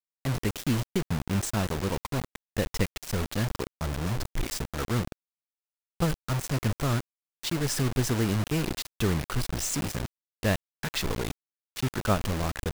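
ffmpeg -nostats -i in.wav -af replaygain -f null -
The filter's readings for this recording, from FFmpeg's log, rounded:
track_gain = +11.2 dB
track_peak = 0.181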